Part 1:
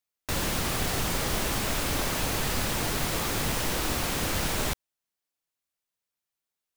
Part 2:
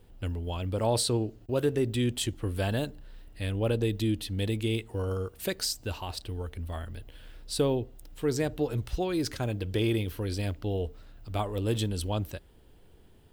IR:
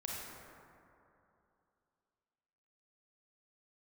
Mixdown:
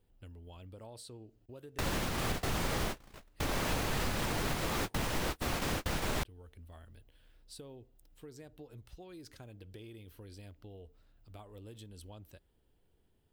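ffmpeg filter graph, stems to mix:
-filter_complex "[0:a]highshelf=frequency=4500:gain=-8,adelay=1500,volume=0.5dB[link_01];[1:a]acompressor=threshold=-32dB:ratio=5,highshelf=frequency=9300:gain=3.5,volume=-15.5dB,asplit=2[link_02][link_03];[link_03]apad=whole_len=364366[link_04];[link_01][link_04]sidechaingate=range=-48dB:threshold=-57dB:ratio=16:detection=peak[link_05];[link_05][link_02]amix=inputs=2:normalize=0,alimiter=limit=-23dB:level=0:latency=1:release=270"

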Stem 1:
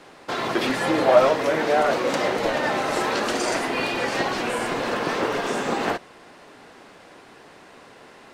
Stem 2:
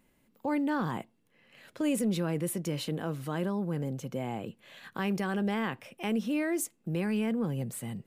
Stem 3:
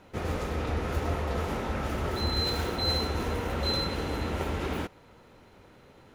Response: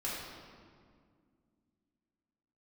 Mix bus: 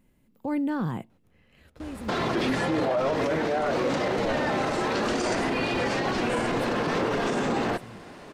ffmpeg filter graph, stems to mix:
-filter_complex "[0:a]acrossover=split=9000[link_01][link_02];[link_02]acompressor=threshold=-60dB:ratio=4:attack=1:release=60[link_03];[link_01][link_03]amix=inputs=2:normalize=0,adelay=1800,volume=0dB[link_04];[1:a]volume=-2.5dB,afade=type=out:start_time=1.4:duration=0.47:silence=0.223872,asplit=2[link_05][link_06];[2:a]highshelf=frequency=9400:gain=5.5,acompressor=threshold=-34dB:ratio=6,adelay=1100,volume=-15dB[link_07];[link_06]apad=whole_len=319634[link_08];[link_07][link_08]sidechaingate=range=-22dB:threshold=-58dB:ratio=16:detection=peak[link_09];[link_04][link_05][link_09]amix=inputs=3:normalize=0,lowshelf=frequency=290:gain=10.5,alimiter=limit=-18dB:level=0:latency=1:release=31"

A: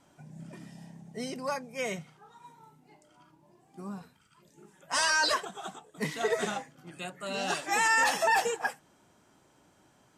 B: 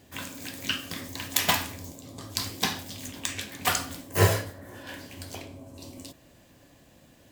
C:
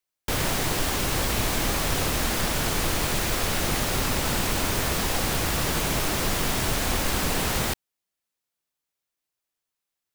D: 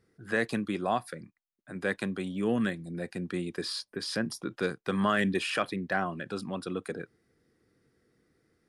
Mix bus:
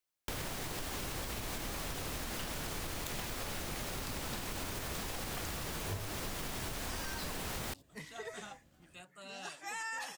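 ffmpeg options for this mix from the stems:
ffmpeg -i stem1.wav -i stem2.wav -i stem3.wav -filter_complex "[0:a]equalizer=frequency=350:width=0.45:gain=-5.5,adelay=1950,volume=-11.5dB[link_01];[1:a]lowshelf=frequency=130:gain=11,adelay=1700,volume=-14dB[link_02];[2:a]alimiter=limit=-19dB:level=0:latency=1:release=229,volume=-3dB[link_03];[link_01][link_02][link_03]amix=inputs=3:normalize=0,acompressor=threshold=-37dB:ratio=5" out.wav

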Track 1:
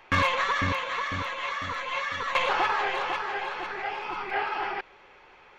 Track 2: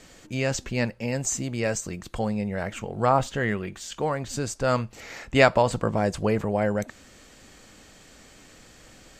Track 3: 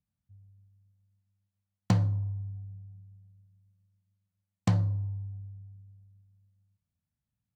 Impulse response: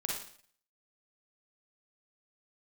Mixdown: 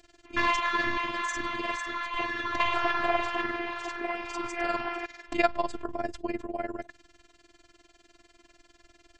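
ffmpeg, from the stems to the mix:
-filter_complex "[0:a]adelay=250,volume=1.5dB[link_01];[1:a]tremolo=f=20:d=0.91,volume=-0.5dB[link_02];[2:a]acompressor=threshold=-31dB:ratio=6,adelay=650,volume=3dB[link_03];[link_01][link_02][link_03]amix=inputs=3:normalize=0,lowpass=5300,afftfilt=real='hypot(re,im)*cos(PI*b)':imag='0':win_size=512:overlap=0.75"

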